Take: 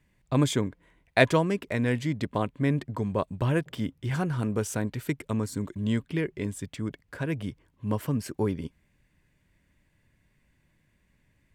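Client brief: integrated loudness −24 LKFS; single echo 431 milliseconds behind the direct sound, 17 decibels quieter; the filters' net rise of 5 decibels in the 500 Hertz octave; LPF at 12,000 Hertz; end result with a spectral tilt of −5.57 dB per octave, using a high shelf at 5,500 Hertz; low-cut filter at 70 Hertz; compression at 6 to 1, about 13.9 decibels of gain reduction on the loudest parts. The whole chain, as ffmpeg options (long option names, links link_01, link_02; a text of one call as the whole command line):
ffmpeg -i in.wav -af "highpass=70,lowpass=12000,equalizer=frequency=500:width_type=o:gain=6,highshelf=frequency=5500:gain=9,acompressor=threshold=-26dB:ratio=6,aecho=1:1:431:0.141,volume=8.5dB" out.wav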